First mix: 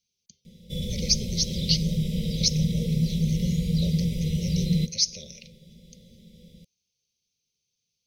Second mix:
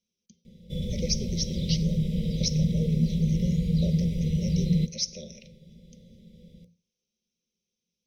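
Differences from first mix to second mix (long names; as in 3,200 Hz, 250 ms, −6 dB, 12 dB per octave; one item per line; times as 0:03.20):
speech: send on
master: add high-shelf EQ 2,800 Hz −11 dB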